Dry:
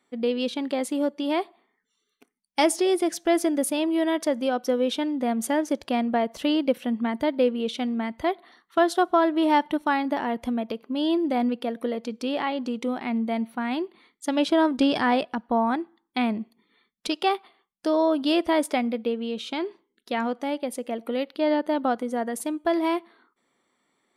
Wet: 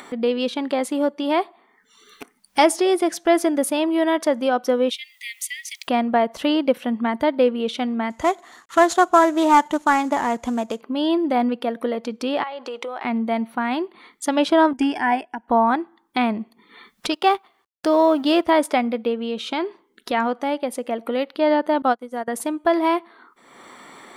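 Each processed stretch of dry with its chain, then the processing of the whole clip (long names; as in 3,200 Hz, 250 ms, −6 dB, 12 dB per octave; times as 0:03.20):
0:04.89–0:05.87: Chebyshev high-pass filter 1,900 Hz, order 10 + background noise blue −71 dBFS
0:08.10–0:10.81: variable-slope delta modulation 64 kbit/s + parametric band 6,900 Hz +14.5 dB 0.26 octaves + highs frequency-modulated by the lows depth 0.1 ms
0:12.43–0:13.05: high-pass filter 420 Hz 24 dB per octave + high-shelf EQ 8,500 Hz −8.5 dB + downward compressor 4 to 1, threshold −35 dBFS
0:14.73–0:15.48: parametric band 6,900 Hz +8 dB 1.2 octaves + phaser with its sweep stopped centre 810 Hz, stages 8 + expander for the loud parts, over −36 dBFS
0:17.13–0:18.50: mu-law and A-law mismatch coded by A + high-pass filter 60 Hz + low-shelf EQ 180 Hz +6.5 dB
0:21.82–0:22.28: high-shelf EQ 4,300 Hz +9.5 dB + expander for the loud parts 2.5 to 1, over −41 dBFS
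whole clip: parametric band 1,100 Hz +6 dB 1.9 octaves; upward compression, threshold −26 dBFS; level +2 dB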